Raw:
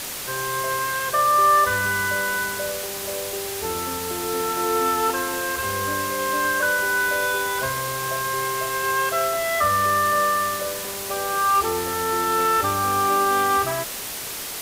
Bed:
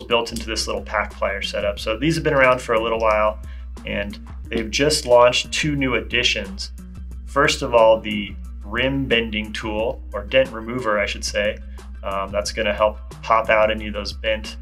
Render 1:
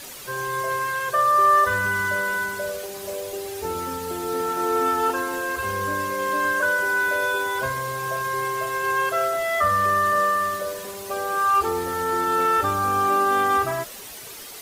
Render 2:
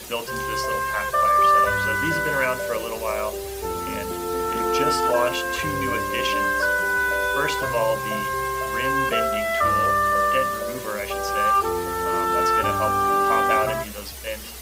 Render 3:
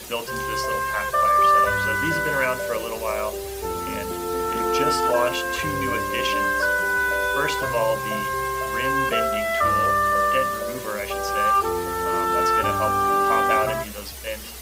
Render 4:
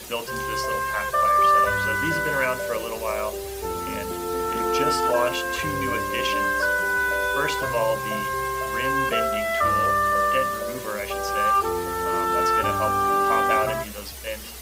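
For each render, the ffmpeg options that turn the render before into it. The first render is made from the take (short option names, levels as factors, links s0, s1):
-af "afftdn=nr=10:nf=-32"
-filter_complex "[1:a]volume=0.335[s0];[0:a][s0]amix=inputs=2:normalize=0"
-af anull
-af "volume=0.891"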